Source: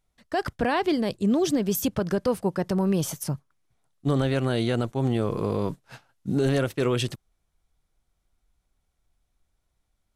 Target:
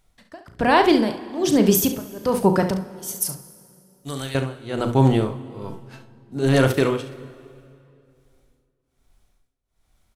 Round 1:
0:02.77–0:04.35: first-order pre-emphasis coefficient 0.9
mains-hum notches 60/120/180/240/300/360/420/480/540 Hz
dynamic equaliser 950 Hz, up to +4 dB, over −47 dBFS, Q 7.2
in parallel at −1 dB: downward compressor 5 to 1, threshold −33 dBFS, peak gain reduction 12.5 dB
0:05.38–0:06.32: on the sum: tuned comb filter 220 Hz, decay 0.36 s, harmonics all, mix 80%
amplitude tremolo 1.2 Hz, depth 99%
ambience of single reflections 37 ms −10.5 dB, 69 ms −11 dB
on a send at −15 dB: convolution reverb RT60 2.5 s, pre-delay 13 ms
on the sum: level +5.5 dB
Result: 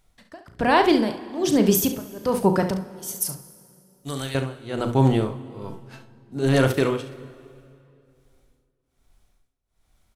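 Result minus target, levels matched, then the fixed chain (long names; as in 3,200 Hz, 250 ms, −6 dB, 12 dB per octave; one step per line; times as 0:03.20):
downward compressor: peak gain reduction +6.5 dB
0:02.77–0:04.35: first-order pre-emphasis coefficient 0.9
mains-hum notches 60/120/180/240/300/360/420/480/540 Hz
dynamic equaliser 950 Hz, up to +4 dB, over −47 dBFS, Q 7.2
in parallel at −1 dB: downward compressor 5 to 1, threshold −25 dBFS, peak gain reduction 6.5 dB
0:05.38–0:06.32: on the sum: tuned comb filter 220 Hz, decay 0.36 s, harmonics all, mix 80%
amplitude tremolo 1.2 Hz, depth 99%
ambience of single reflections 37 ms −10.5 dB, 69 ms −11 dB
on a send at −15 dB: convolution reverb RT60 2.5 s, pre-delay 13 ms
on the sum: level +5.5 dB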